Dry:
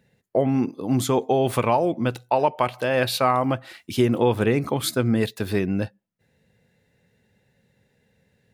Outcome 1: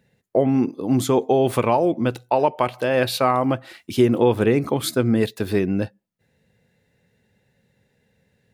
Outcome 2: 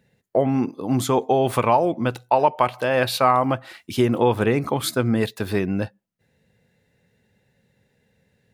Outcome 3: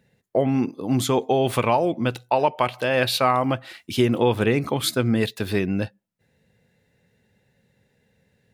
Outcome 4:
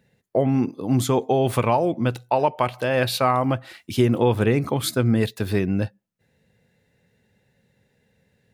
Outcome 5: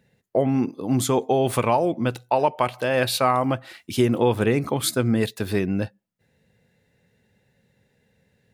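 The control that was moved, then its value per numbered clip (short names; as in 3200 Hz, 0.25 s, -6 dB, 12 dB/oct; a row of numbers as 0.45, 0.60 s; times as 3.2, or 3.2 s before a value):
dynamic EQ, frequency: 350, 1000, 3100, 100, 8800 Hz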